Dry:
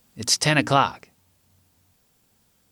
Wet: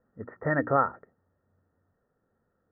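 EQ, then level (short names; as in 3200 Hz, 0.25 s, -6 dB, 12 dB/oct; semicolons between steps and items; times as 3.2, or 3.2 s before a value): rippled Chebyshev low-pass 1900 Hz, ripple 9 dB; air absorption 160 m; 0.0 dB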